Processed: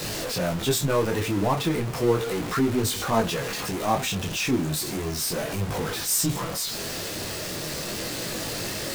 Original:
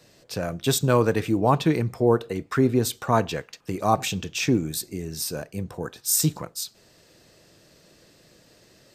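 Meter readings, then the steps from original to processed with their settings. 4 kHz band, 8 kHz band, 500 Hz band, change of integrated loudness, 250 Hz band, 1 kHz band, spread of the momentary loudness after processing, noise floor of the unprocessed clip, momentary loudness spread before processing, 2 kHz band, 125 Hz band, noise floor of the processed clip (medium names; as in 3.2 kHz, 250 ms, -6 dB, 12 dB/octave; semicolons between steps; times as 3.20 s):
+4.0 dB, +1.0 dB, -1.5 dB, -1.5 dB, -1.5 dB, -2.0 dB, 7 LU, -57 dBFS, 12 LU, +2.5 dB, -2.0 dB, -32 dBFS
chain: jump at every zero crossing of -20.5 dBFS; detune thickener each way 12 cents; trim -1.5 dB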